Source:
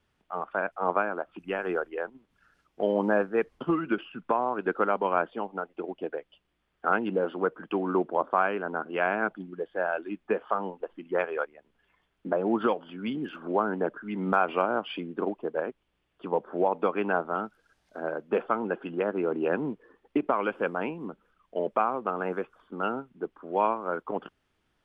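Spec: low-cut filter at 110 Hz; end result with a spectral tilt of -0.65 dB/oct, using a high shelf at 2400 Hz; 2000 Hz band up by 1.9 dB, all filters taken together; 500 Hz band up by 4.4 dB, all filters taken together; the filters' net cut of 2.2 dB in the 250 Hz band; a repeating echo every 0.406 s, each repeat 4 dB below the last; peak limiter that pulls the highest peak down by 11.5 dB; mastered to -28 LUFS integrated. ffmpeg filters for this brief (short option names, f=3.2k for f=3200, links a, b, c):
-af "highpass=110,equalizer=f=250:t=o:g=-6.5,equalizer=f=500:t=o:g=7,equalizer=f=2k:t=o:g=4.5,highshelf=f=2.4k:g=-4.5,alimiter=limit=-19dB:level=0:latency=1,aecho=1:1:406|812|1218|1624|2030|2436|2842|3248|3654:0.631|0.398|0.25|0.158|0.0994|0.0626|0.0394|0.0249|0.0157,volume=2dB"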